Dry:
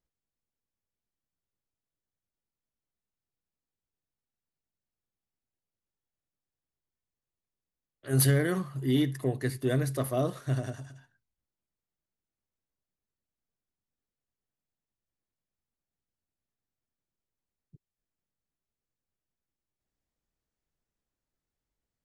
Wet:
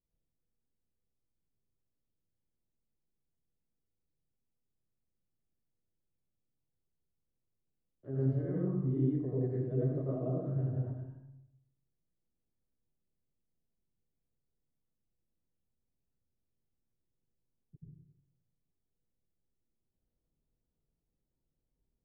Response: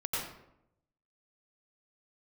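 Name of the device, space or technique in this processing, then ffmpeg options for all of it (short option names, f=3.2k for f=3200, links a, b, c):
television next door: -filter_complex "[0:a]acompressor=threshold=-34dB:ratio=4,lowpass=470[a];[1:a]atrim=start_sample=2205[b];[a][b]afir=irnorm=-1:irlink=0"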